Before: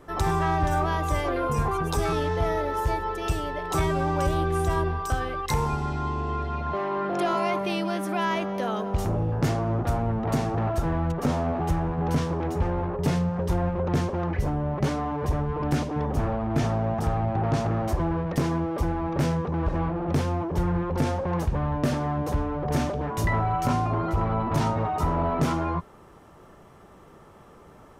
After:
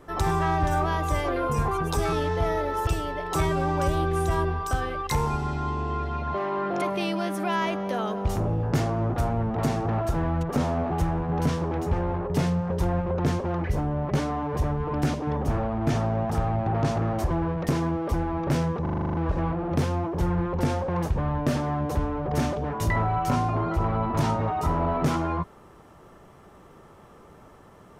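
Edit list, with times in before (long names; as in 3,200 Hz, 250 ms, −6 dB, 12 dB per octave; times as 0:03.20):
0:02.87–0:03.26: remove
0:07.21–0:07.51: remove
0:19.51: stutter 0.04 s, 9 plays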